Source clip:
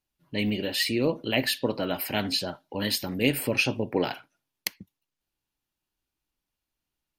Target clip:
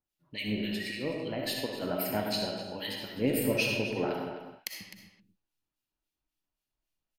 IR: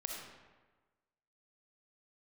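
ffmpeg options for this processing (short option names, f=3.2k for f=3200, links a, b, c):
-filter_complex "[0:a]asettb=1/sr,asplit=3[a][b][c];[a]atrim=end=0.944[d];[b]atrim=start=0.94:end=1.82,asetpts=PTS-STARTPTS,afade=t=in:d=0.004:c=qsin,afade=t=out:st=0.876:d=0.004:c=qsin,acompressor=threshold=-27dB:ratio=3[e];[c]atrim=start=1.816[f];[d][e]acrossfade=d=0.004:c1=hsin:c2=qsin[g];[g][f]acrossfade=d=0.004:c1=qsin:c2=hsin,acrossover=split=1700[h][i];[h]aeval=exprs='val(0)*(1-1/2+1/2*cos(2*PI*3.7*n/s))':c=same[j];[i]aeval=exprs='val(0)*(1-1/2-1/2*cos(2*PI*3.7*n/s))':c=same[k];[j][k]amix=inputs=2:normalize=0,asplit=2[l][m];[m]adelay=256.6,volume=-10dB,highshelf=f=4k:g=-5.77[n];[l][n]amix=inputs=2:normalize=0[o];[1:a]atrim=start_sample=2205,afade=t=out:st=0.32:d=0.01,atrim=end_sample=14553[p];[o][p]afir=irnorm=-1:irlink=0"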